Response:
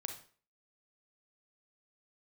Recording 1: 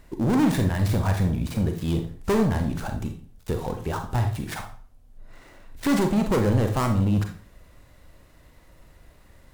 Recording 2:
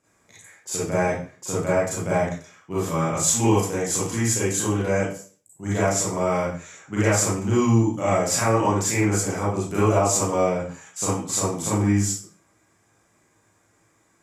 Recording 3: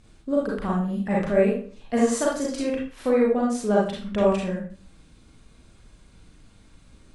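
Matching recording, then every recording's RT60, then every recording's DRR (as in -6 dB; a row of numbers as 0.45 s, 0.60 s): 1; 0.45 s, 0.45 s, 0.45 s; 4.5 dB, -9.5 dB, -4.5 dB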